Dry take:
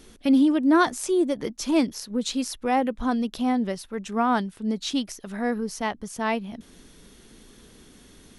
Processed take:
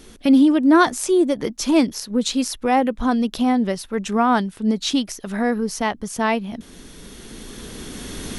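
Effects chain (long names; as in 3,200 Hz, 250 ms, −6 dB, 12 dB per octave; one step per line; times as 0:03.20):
camcorder AGC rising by 7.6 dB per second
level +5 dB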